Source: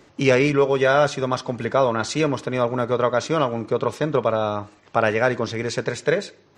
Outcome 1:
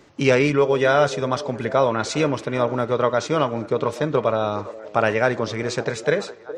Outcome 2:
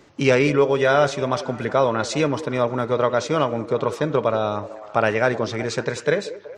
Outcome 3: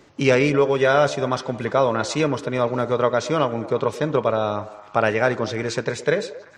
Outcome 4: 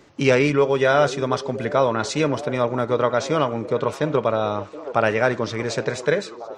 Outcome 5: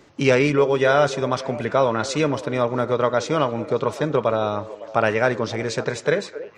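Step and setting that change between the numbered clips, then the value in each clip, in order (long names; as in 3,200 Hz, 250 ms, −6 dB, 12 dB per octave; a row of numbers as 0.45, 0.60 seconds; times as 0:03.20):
echo through a band-pass that steps, delay time: 414, 187, 115, 724, 278 milliseconds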